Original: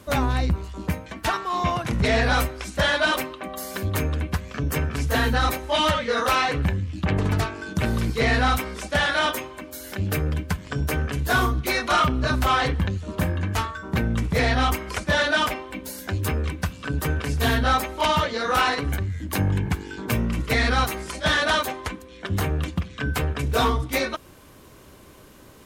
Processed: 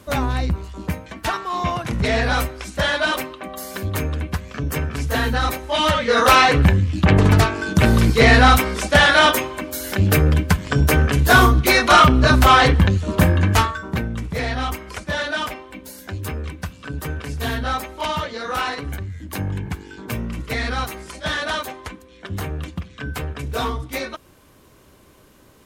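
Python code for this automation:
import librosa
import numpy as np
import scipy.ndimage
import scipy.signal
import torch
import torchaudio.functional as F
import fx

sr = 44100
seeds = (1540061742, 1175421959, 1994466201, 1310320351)

y = fx.gain(x, sr, db=fx.line((5.73, 1.0), (6.29, 9.0), (13.62, 9.0), (14.11, -3.0)))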